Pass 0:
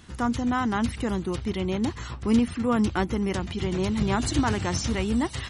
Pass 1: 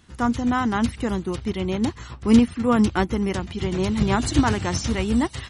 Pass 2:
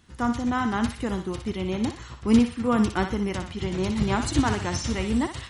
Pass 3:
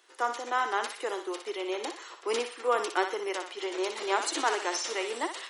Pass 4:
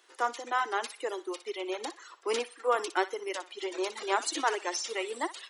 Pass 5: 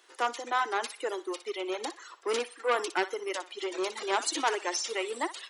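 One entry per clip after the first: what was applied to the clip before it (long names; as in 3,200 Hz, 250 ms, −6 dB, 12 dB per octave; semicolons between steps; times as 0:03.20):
expander for the loud parts 1.5 to 1, over −41 dBFS; level +7 dB
feedback echo with a high-pass in the loop 60 ms, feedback 45%, high-pass 670 Hz, level −6.5 dB; level −3.5 dB
Butterworth high-pass 360 Hz 48 dB per octave
reverb reduction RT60 1.8 s
saturating transformer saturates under 1,800 Hz; level +2 dB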